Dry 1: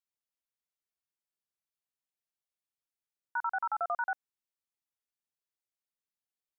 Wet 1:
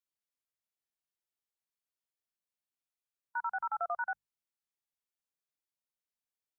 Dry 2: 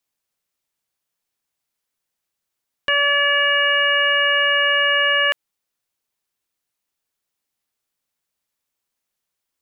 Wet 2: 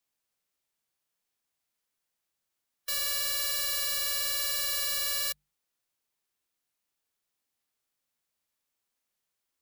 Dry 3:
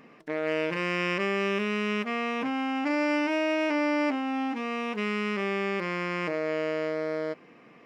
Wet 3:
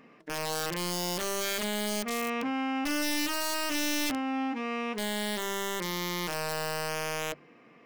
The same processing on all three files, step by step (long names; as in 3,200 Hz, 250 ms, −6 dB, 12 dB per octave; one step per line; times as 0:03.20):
wrap-around overflow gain 22 dB
harmonic and percussive parts rebalanced percussive −4 dB
mains-hum notches 50/100/150/200 Hz
level −1.5 dB